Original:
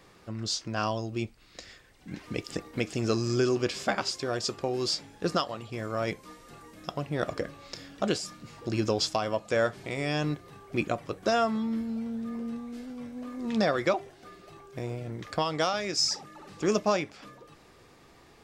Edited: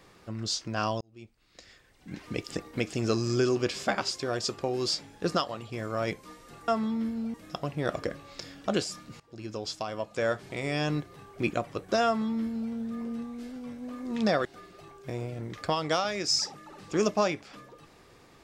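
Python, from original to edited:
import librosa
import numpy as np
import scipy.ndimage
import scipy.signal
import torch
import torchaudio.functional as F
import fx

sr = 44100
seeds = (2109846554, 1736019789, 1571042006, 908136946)

y = fx.edit(x, sr, fx.fade_in_span(start_s=1.01, length_s=1.24),
    fx.fade_in_from(start_s=8.54, length_s=1.45, floor_db=-18.5),
    fx.duplicate(start_s=11.4, length_s=0.66, to_s=6.68),
    fx.cut(start_s=13.79, length_s=0.35), tone=tone)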